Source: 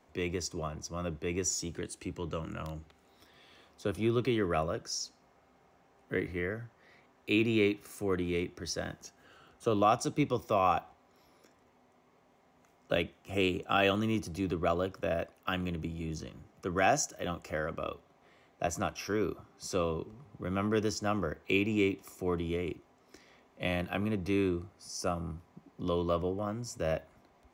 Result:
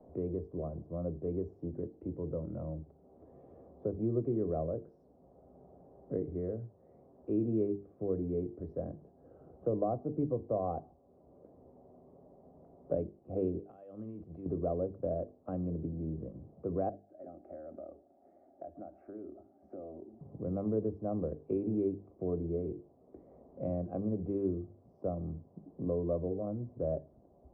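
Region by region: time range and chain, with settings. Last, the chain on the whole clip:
13.59–14.46 s: tilt shelf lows -9.5 dB, about 1.5 kHz + compression 12:1, threshold -40 dBFS
16.89–20.21 s: static phaser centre 700 Hz, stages 8 + compression 4:1, threshold -41 dBFS + high-pass 480 Hz 6 dB/octave
whole clip: Chebyshev low-pass 590 Hz, order 3; hum notches 50/100/150/200/250/300/350/400/450 Hz; three bands compressed up and down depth 40%

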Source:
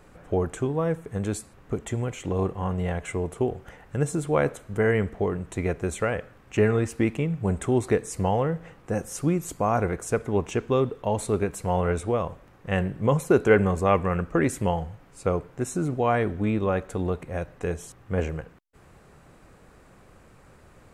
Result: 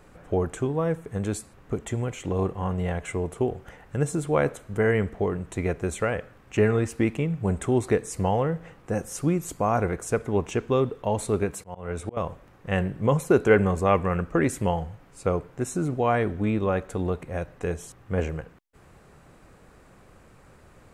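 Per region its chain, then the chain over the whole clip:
11.53–12.17 s: high-pass 57 Hz 24 dB/octave + slow attack 347 ms
whole clip: none

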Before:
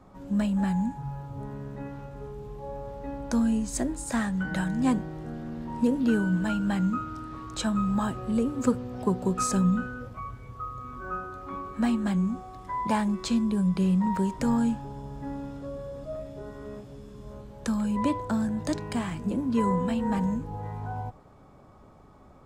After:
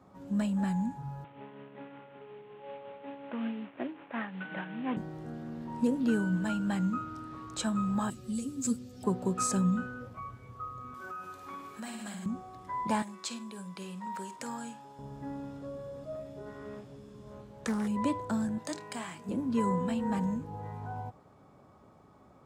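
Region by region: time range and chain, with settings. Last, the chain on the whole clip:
1.24–4.97 s: CVSD coder 16 kbps + high-pass 270 Hz + tremolo 5.4 Hz, depth 39%
8.10–9.04 s: FFT filter 250 Hz 0 dB, 970 Hz -16 dB, 5.1 kHz +10 dB + three-phase chorus
10.94–12.26 s: tilt EQ +3 dB/octave + flutter echo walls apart 9.1 m, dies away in 0.69 s + compression 5:1, threshold -34 dBFS
13.02–14.99 s: high-pass 1.1 kHz 6 dB/octave + flutter echo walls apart 8.6 m, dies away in 0.22 s
16.45–17.88 s: dynamic bell 1.8 kHz, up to +5 dB, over -53 dBFS, Q 0.72 + loudspeaker Doppler distortion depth 0.35 ms
18.58–19.29 s: high-pass 600 Hz 6 dB/octave + doubling 27 ms -12 dB
whole clip: high-pass 93 Hz 12 dB/octave; dynamic bell 7.9 kHz, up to +4 dB, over -55 dBFS, Q 2.3; trim -4 dB

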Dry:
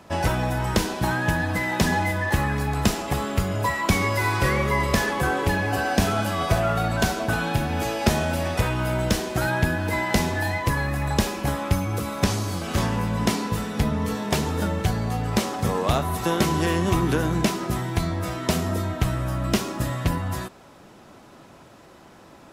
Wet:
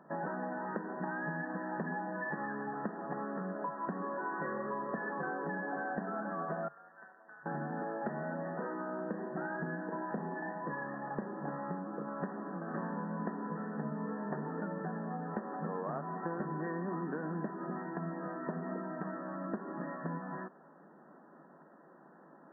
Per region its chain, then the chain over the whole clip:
6.68–7.46 s: differentiator + AM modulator 210 Hz, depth 60%
8.41–12.08 s: peaking EQ 3.6 kHz -6 dB 2.6 oct + flutter echo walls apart 5.9 m, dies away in 0.3 s
whole clip: FFT band-pass 140–1900 Hz; compression, threshold -25 dBFS; trim -9 dB

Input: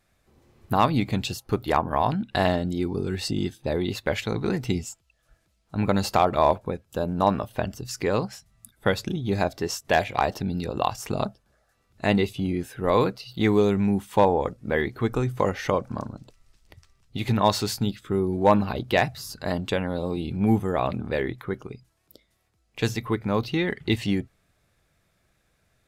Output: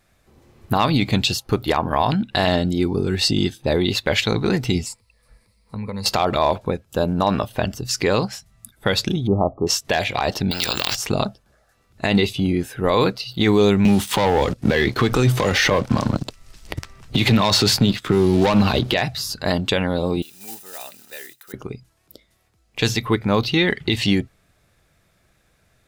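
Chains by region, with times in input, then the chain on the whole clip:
4.86–6.06 s: rippled EQ curve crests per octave 0.92, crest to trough 13 dB + compression 5:1, threshold -34 dBFS
9.27–9.67 s: brick-wall FIR low-pass 1.3 kHz + tape noise reduction on one side only encoder only
10.51–10.95 s: careless resampling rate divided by 2×, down filtered, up hold + spectrum-flattening compressor 4:1
13.85–18.94 s: waveshaping leveller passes 2 + three bands compressed up and down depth 70%
20.22–21.54 s: block-companded coder 5-bit + differentiator + comb of notches 1.1 kHz
whole clip: dynamic bell 3.9 kHz, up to +8 dB, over -44 dBFS, Q 0.84; peak limiter -13.5 dBFS; trim +6.5 dB

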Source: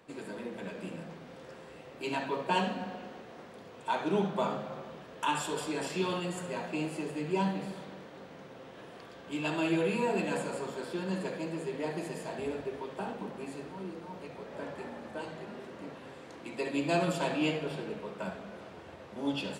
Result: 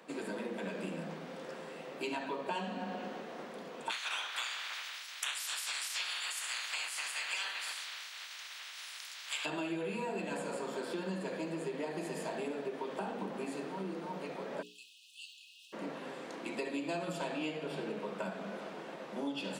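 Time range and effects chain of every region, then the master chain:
3.89–9.44 s: spectral peaks clipped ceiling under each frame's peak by 28 dB + high-pass 1.5 kHz
14.61–15.72 s: crackle 310 per s -60 dBFS + brick-wall FIR high-pass 2.5 kHz
whole clip: steep high-pass 160 Hz 48 dB/octave; hum notches 60/120/180/240/300/360/420/480 Hz; compression 6:1, threshold -39 dBFS; trim +4 dB

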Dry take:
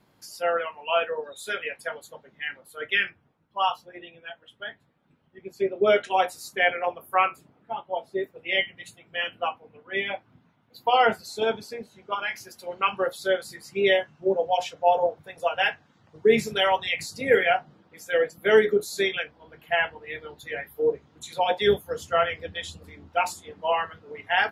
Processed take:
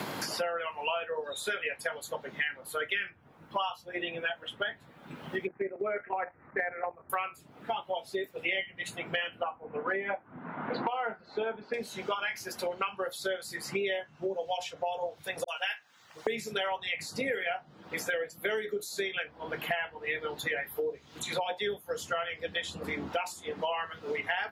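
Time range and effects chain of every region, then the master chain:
5.47–7.10 s: steep low-pass 2.1 kHz 72 dB/octave + level held to a coarse grid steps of 13 dB
9.43–11.74 s: low-pass 1.6 kHz 24 dB/octave + peaking EQ 98 Hz -10.5 dB 0.79 oct + three bands compressed up and down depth 70%
15.44–16.27 s: differentiator + phase dispersion highs, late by 42 ms, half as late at 420 Hz
whole clip: compression 2.5:1, threshold -41 dBFS; bass shelf 380 Hz -5.5 dB; three bands compressed up and down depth 100%; trim +6 dB

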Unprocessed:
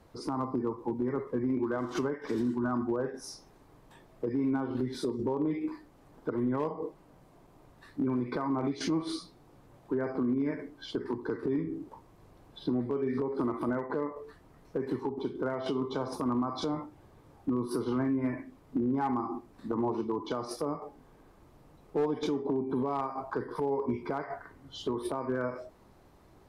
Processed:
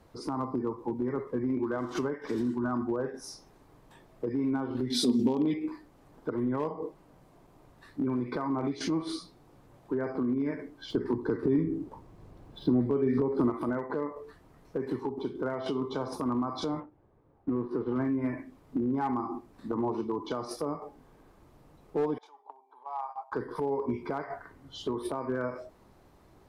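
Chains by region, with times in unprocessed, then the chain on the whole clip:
4.90–5.54 s: high-pass 56 Hz + resonant high shelf 2.1 kHz +12 dB, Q 1.5 + small resonant body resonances 240/730 Hz, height 15 dB, ringing for 95 ms
10.90–13.50 s: median filter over 3 samples + bass shelf 430 Hz +7 dB
16.80–17.96 s: companding laws mixed up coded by A + Bessel low-pass 1.4 kHz + peaking EQ 450 Hz +3 dB 0.95 oct
22.18–23.32 s: ladder high-pass 760 Hz, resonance 70% + gate -44 dBFS, range -8 dB
whole clip: none

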